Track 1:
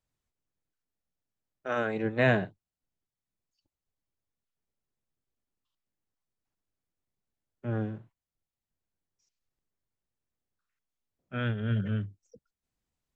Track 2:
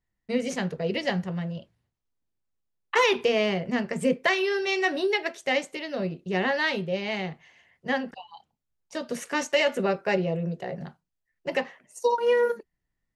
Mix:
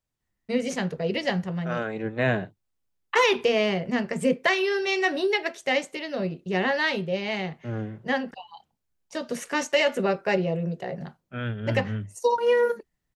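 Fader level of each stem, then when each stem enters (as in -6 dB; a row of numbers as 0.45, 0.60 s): 0.0, +1.0 dB; 0.00, 0.20 s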